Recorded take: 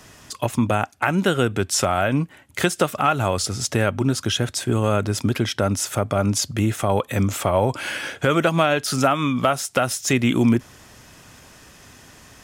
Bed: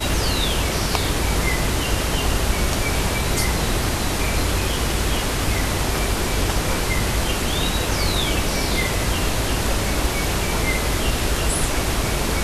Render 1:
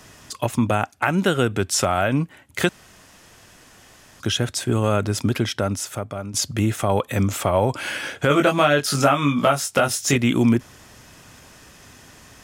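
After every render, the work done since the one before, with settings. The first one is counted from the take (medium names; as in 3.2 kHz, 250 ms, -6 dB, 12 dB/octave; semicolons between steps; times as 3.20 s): 2.69–4.20 s: room tone; 5.40–6.34 s: fade out, to -14.5 dB; 8.28–10.16 s: doubling 21 ms -3.5 dB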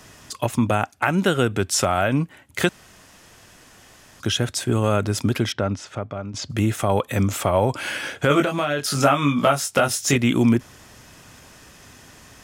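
5.52–6.50 s: distance through air 140 m; 8.44–8.96 s: compression 3:1, threshold -20 dBFS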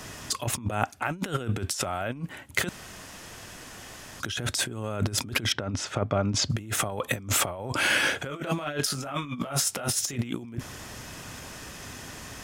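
peak limiter -12 dBFS, peak gain reduction 9.5 dB; compressor with a negative ratio -28 dBFS, ratio -0.5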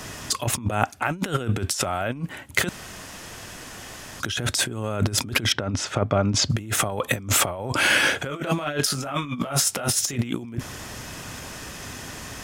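trim +4.5 dB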